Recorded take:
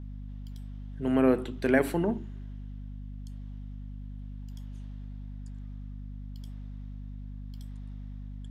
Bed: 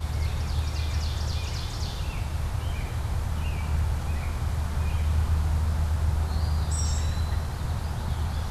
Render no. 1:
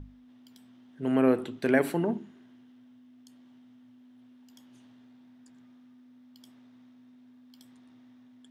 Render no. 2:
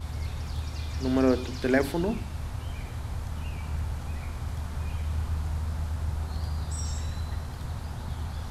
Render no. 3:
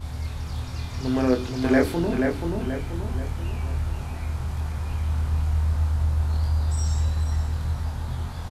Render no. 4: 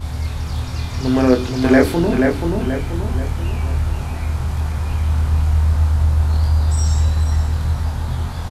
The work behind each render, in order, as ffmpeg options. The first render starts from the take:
ffmpeg -i in.wav -af "bandreject=frequency=50:width_type=h:width=6,bandreject=frequency=100:width_type=h:width=6,bandreject=frequency=150:width_type=h:width=6,bandreject=frequency=200:width_type=h:width=6" out.wav
ffmpeg -i in.wav -i bed.wav -filter_complex "[1:a]volume=-5.5dB[link_01];[0:a][link_01]amix=inputs=2:normalize=0" out.wav
ffmpeg -i in.wav -filter_complex "[0:a]asplit=2[link_01][link_02];[link_02]adelay=24,volume=-3.5dB[link_03];[link_01][link_03]amix=inputs=2:normalize=0,asplit=2[link_04][link_05];[link_05]adelay=481,lowpass=frequency=2700:poles=1,volume=-3.5dB,asplit=2[link_06][link_07];[link_07]adelay=481,lowpass=frequency=2700:poles=1,volume=0.45,asplit=2[link_08][link_09];[link_09]adelay=481,lowpass=frequency=2700:poles=1,volume=0.45,asplit=2[link_10][link_11];[link_11]adelay=481,lowpass=frequency=2700:poles=1,volume=0.45,asplit=2[link_12][link_13];[link_13]adelay=481,lowpass=frequency=2700:poles=1,volume=0.45,asplit=2[link_14][link_15];[link_15]adelay=481,lowpass=frequency=2700:poles=1,volume=0.45[link_16];[link_04][link_06][link_08][link_10][link_12][link_14][link_16]amix=inputs=7:normalize=0" out.wav
ffmpeg -i in.wav -af "volume=7.5dB,alimiter=limit=-1dB:level=0:latency=1" out.wav

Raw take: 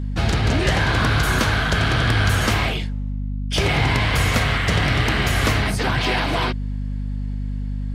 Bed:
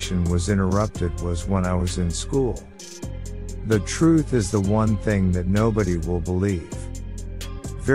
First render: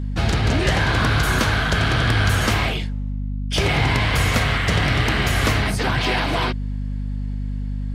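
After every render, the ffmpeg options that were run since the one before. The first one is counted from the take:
ffmpeg -i in.wav -af anull out.wav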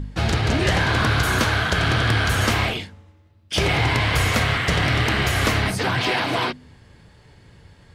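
ffmpeg -i in.wav -af "bandreject=frequency=50:width_type=h:width=4,bandreject=frequency=100:width_type=h:width=4,bandreject=frequency=150:width_type=h:width=4,bandreject=frequency=200:width_type=h:width=4,bandreject=frequency=250:width_type=h:width=4" out.wav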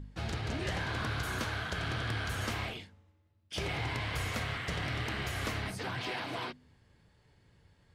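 ffmpeg -i in.wav -af "volume=-15.5dB" out.wav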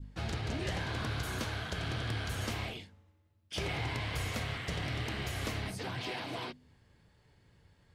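ffmpeg -i in.wav -af "adynamicequalizer=threshold=0.00224:dfrequency=1400:dqfactor=1.1:tfrequency=1400:tqfactor=1.1:attack=5:release=100:ratio=0.375:range=2.5:mode=cutabove:tftype=bell" out.wav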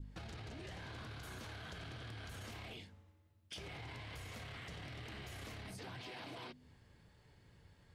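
ffmpeg -i in.wav -af "alimiter=level_in=10.5dB:limit=-24dB:level=0:latency=1:release=15,volume=-10.5dB,acompressor=threshold=-46dB:ratio=6" out.wav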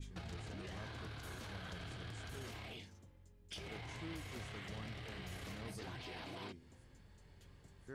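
ffmpeg -i in.wav -i bed.wav -filter_complex "[1:a]volume=-32.5dB[link_01];[0:a][link_01]amix=inputs=2:normalize=0" out.wav

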